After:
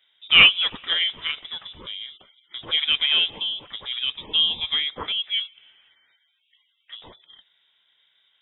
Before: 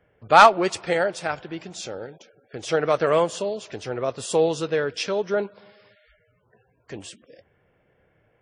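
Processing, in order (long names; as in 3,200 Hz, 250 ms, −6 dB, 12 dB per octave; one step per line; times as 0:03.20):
0:05.12–0:07.02: three-way crossover with the lows and the highs turned down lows −12 dB, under 310 Hz, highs −21 dB, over 2,300 Hz
voice inversion scrambler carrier 3,700 Hz
level −1 dB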